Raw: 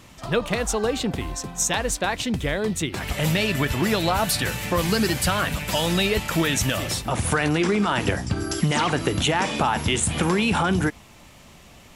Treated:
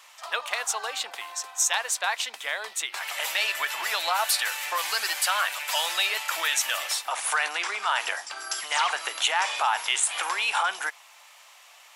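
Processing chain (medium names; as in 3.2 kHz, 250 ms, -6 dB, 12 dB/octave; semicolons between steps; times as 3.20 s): high-pass 790 Hz 24 dB/octave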